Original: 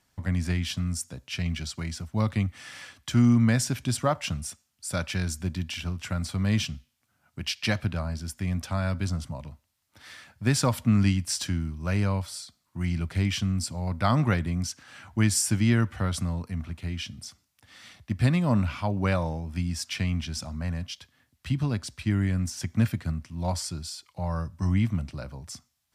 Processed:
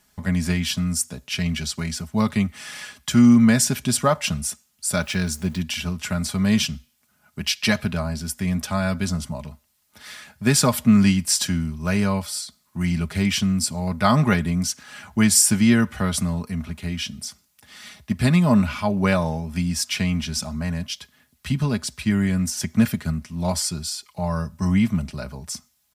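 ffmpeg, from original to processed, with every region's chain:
-filter_complex "[0:a]asettb=1/sr,asplit=3[s0][s1][s2];[s0]atrim=end=4.964[s3];[s1]atrim=start=4.96:end=5.6,asetpts=PTS-STARTPTS,afade=t=in:d=0.004:c=qsin,afade=t=out:st=0.636:d=0.004:c=qsin,highshelf=f=7000:g=-6,aeval=exprs='val(0)*gte(abs(val(0)),0.00282)':c=same[s4];[s2]atrim=start=5.596[s5];[s3][s4]acrossfade=d=0.004:c1=hsin:c2=qsin[s6];[s6][s5]acrossfade=d=0.004:c1=qsin:c2=hsin,highshelf=f=8600:g=8.5,aecho=1:1:4.8:0.58,volume=1.78"

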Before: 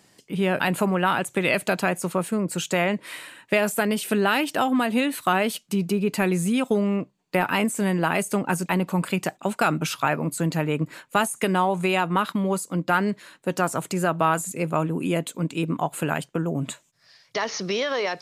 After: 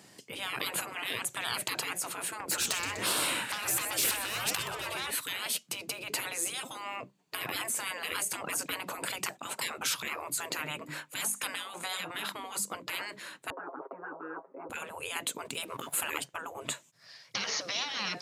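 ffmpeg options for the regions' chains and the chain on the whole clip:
-filter_complex "[0:a]asettb=1/sr,asplit=3[s0][s1][s2];[s0]atrim=end=2.404[s3];[s1]atrim=start=2.4:end=5.11,asetpts=PTS-STARTPTS,afade=t=in:d=0.004:c=qsin,afade=t=out:st=2.706:d=0.004:c=qsin,acompressor=threshold=0.02:ratio=8:attack=3.2:release=140:knee=1:detection=peak,aeval=exprs='0.119*sin(PI/2*3.16*val(0)/0.119)':c=same,asplit=6[s4][s5][s6][s7][s8][s9];[s5]adelay=124,afreqshift=-82,volume=0.224[s10];[s6]adelay=248,afreqshift=-164,volume=0.107[s11];[s7]adelay=372,afreqshift=-246,volume=0.0513[s12];[s8]adelay=496,afreqshift=-328,volume=0.0248[s13];[s9]adelay=620,afreqshift=-410,volume=0.0119[s14];[s4][s10][s11][s12][s13][s14]amix=inputs=6:normalize=0,atrim=end_sample=119511[s15];[s2]atrim=start=5.106[s16];[s3][s15]acrossfade=d=0.004:c1=hsin:c2=qsin[s17];[s17][s16]acrossfade=d=0.004:c1=qsin:c2=hsin,asettb=1/sr,asplit=3[s18][s19][s20];[s18]atrim=end=10.604[s21];[s19]atrim=start=10.6:end=12.75,asetpts=PTS-STARTPTS,afade=t=in:d=0.004:c=qsin,afade=t=out:st=2.146:d=0.004:c=qsin,equalizer=f=140:w=0.6:g=-8,bandreject=f=50:t=h:w=6,bandreject=f=100:t=h:w=6,bandreject=f=150:t=h:w=6,bandreject=f=200:t=h:w=6,bandreject=f=250:t=h:w=6,bandreject=f=300:t=h:w=6[s22];[s20]atrim=start=12.746[s23];[s21][s22]acrossfade=d=0.004:c1=hsin:c2=qsin[s24];[s24][s23]acrossfade=d=0.004:c1=qsin:c2=hsin,asettb=1/sr,asplit=3[s25][s26][s27];[s25]atrim=end=13.504[s28];[s26]atrim=start=13.5:end=14.7,asetpts=PTS-STARTPTS,afade=t=in:d=0.004:c=qsin,afade=t=out:st=1.196:d=0.004:c=qsin,asuperpass=centerf=670:order=8:qfactor=0.84,aecho=1:1:7.4:0.94,atrim=end_sample=52920[s29];[s27]atrim=start=14.696[s30];[s28][s29]acrossfade=d=0.004:c1=hsin:c2=qsin[s31];[s31][s30]acrossfade=d=0.004:c1=qsin:c2=hsin,asettb=1/sr,asplit=3[s32][s33][s34];[s32]atrim=end=15.454[s35];[s33]atrim=start=15.45:end=16.08,asetpts=PTS-STARTPTS,afade=t=in:d=0.004:c=qsin,afade=t=out:st=0.626:d=0.004:c=qsin,equalizer=f=11000:t=o:w=0.64:g=8.5,aeval=exprs='sgn(val(0))*max(abs(val(0))-0.00168,0)':c=same[s36];[s34]atrim=start=16.076[s37];[s35][s36]acrossfade=d=0.004:c1=hsin:c2=qsin[s38];[s38][s37]acrossfade=d=0.004:c1=qsin:c2=hsin,afftfilt=real='re*lt(hypot(re,im),0.0794)':imag='im*lt(hypot(re,im),0.0794)':win_size=1024:overlap=0.75,highpass=98,volume=1.26"

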